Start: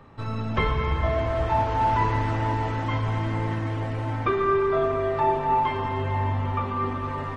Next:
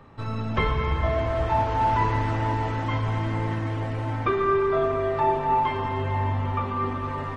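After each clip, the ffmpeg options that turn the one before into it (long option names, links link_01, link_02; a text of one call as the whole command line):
ffmpeg -i in.wav -af anull out.wav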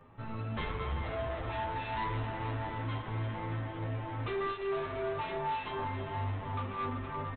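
ffmpeg -i in.wav -filter_complex "[0:a]aresample=8000,volume=25.5dB,asoftclip=hard,volume=-25.5dB,aresample=44100,asplit=2[link_01][link_02];[link_02]adelay=9.6,afreqshift=2.9[link_03];[link_01][link_03]amix=inputs=2:normalize=1,volume=-4.5dB" out.wav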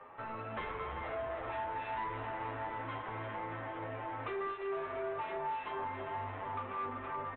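ffmpeg -i in.wav -filter_complex "[0:a]acrossover=split=300[link_01][link_02];[link_02]acompressor=threshold=-50dB:ratio=2.5[link_03];[link_01][link_03]amix=inputs=2:normalize=0,acrossover=split=420 2800:gain=0.0794 1 0.0708[link_04][link_05][link_06];[link_04][link_05][link_06]amix=inputs=3:normalize=0,volume=9dB" out.wav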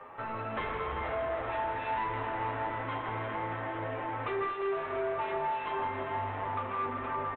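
ffmpeg -i in.wav -af "aecho=1:1:159:0.376,volume=5dB" out.wav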